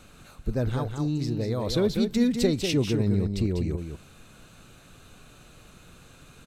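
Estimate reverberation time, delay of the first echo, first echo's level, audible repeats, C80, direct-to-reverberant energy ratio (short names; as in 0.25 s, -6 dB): none, 0.196 s, -6.5 dB, 1, none, none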